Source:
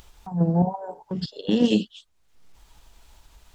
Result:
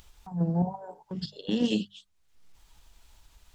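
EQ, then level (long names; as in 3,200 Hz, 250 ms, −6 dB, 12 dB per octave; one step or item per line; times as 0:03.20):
parametric band 520 Hz −4.5 dB 2.8 octaves
mains-hum notches 50/100/150/200 Hz
−3.5 dB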